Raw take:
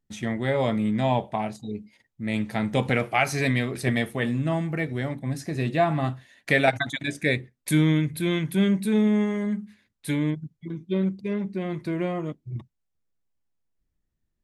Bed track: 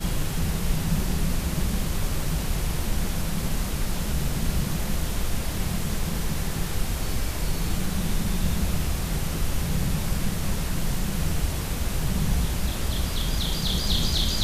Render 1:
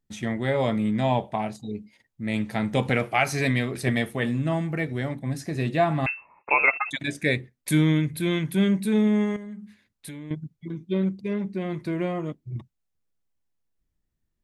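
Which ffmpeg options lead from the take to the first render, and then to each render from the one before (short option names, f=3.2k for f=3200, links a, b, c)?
-filter_complex "[0:a]asettb=1/sr,asplit=3[a][b][c];[a]atrim=end=6.064[d];[b]atrim=start=6.06:end=6.91,asetpts=PTS-STARTPTS,afade=t=in:d=0.004:c=qsin,afade=t=out:st=0.846:d=0.004:c=qsin,lowpass=f=2.4k:t=q:w=0.5098,lowpass=f=2.4k:t=q:w=0.6013,lowpass=f=2.4k:t=q:w=0.9,lowpass=f=2.4k:t=q:w=2.563,afreqshift=-2800[e];[c]atrim=start=6.906[f];[d][e]acrossfade=d=0.004:c1=hsin:c2=qsin[g];[g][f]acrossfade=d=0.004:c1=qsin:c2=hsin,asettb=1/sr,asplit=3[h][i][j];[h]atrim=end=9.364[k];[i]atrim=start=9.36:end=10.31,asetpts=PTS-STARTPTS,afade=t=in:d=0.004:c=qsin,afade=t=out:st=0.946:d=0.004:c=qsin,acompressor=threshold=-36dB:ratio=6:attack=3.2:release=140:knee=1:detection=peak[l];[j]atrim=start=10.306[m];[k][l]acrossfade=d=0.004:c1=hsin:c2=qsin[n];[n][m]acrossfade=d=0.004:c1=qsin:c2=hsin"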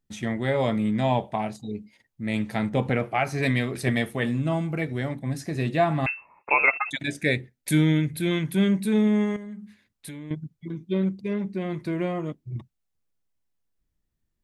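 -filter_complex "[0:a]asettb=1/sr,asplit=3[a][b][c];[a]atrim=end=2.694[d];[b]atrim=start=2.69:end=3.43,asetpts=PTS-STARTPTS,afade=t=in:d=0.004:c=qsin,afade=t=out:st=0.736:d=0.004:c=qsin,highshelf=f=2.3k:g=-10.5[e];[c]atrim=start=3.426[f];[d][e]acrossfade=d=0.004:c1=hsin:c2=qsin[g];[g][f]acrossfade=d=0.004:c1=qsin:c2=hsin,asettb=1/sr,asplit=3[h][i][j];[h]atrim=end=4.404[k];[i]atrim=start=4.4:end=4.82,asetpts=PTS-STARTPTS,afade=t=in:d=0.004:c=qsin,afade=t=out:st=0.416:d=0.004:c=qsin,bandreject=f=1.8k:w=5.2[l];[j]atrim=start=4.816[m];[k][l]acrossfade=d=0.004:c1=hsin:c2=qsin[n];[n][m]acrossfade=d=0.004:c1=qsin:c2=hsin,asettb=1/sr,asplit=3[o][p][q];[o]atrim=end=6.924[r];[p]atrim=start=6.92:end=8.31,asetpts=PTS-STARTPTS,afade=t=in:d=0.004:c=qsin,afade=t=out:st=1.386:d=0.004:c=qsin,asuperstop=centerf=1100:order=4:qfactor=4.9[s];[q]atrim=start=8.306[t];[r][s]acrossfade=d=0.004:c1=hsin:c2=qsin[u];[u][t]acrossfade=d=0.004:c1=qsin:c2=hsin"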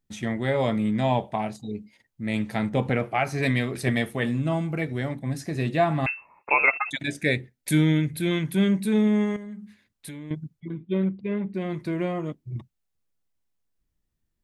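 -filter_complex "[0:a]asettb=1/sr,asplit=3[a][b][c];[a]atrim=end=10.604[d];[b]atrim=start=10.6:end=11.54,asetpts=PTS-STARTPTS,afade=t=in:d=0.004:c=qsin,afade=t=out:st=0.936:d=0.004:c=qsin,lowpass=f=3.4k:w=0.5412,lowpass=f=3.4k:w=1.3066[e];[c]atrim=start=11.536[f];[d][e]acrossfade=d=0.004:c1=hsin:c2=qsin[g];[g][f]acrossfade=d=0.004:c1=qsin:c2=hsin"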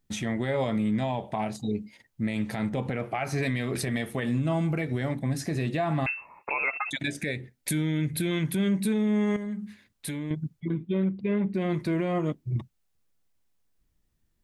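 -filter_complex "[0:a]asplit=2[a][b];[b]acompressor=threshold=-29dB:ratio=6,volume=-2dB[c];[a][c]amix=inputs=2:normalize=0,alimiter=limit=-19dB:level=0:latency=1:release=133"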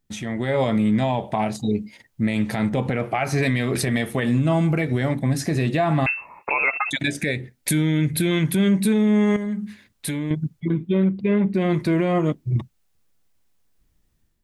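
-af "dynaudnorm=f=290:g=3:m=7dB"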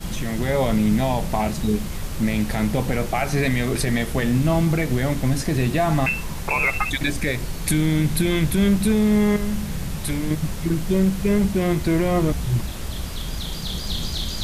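-filter_complex "[1:a]volume=-3dB[a];[0:a][a]amix=inputs=2:normalize=0"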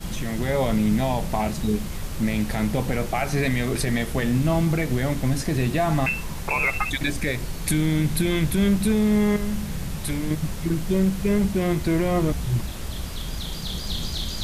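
-af "volume=-2dB"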